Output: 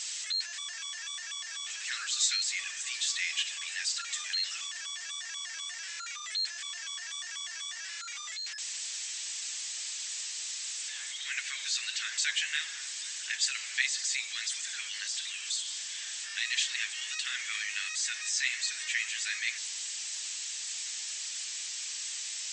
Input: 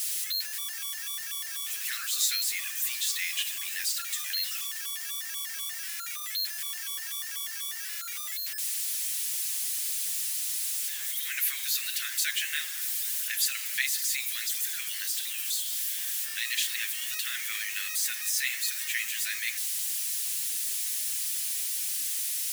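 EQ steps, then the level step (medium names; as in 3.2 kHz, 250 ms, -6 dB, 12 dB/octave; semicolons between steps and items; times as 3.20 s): brick-wall FIR low-pass 8.2 kHz; 0.0 dB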